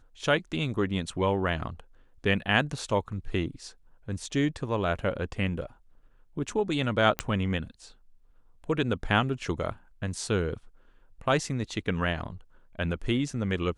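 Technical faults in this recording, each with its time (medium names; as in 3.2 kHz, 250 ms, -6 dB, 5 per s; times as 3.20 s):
7.19 s: pop -11 dBFS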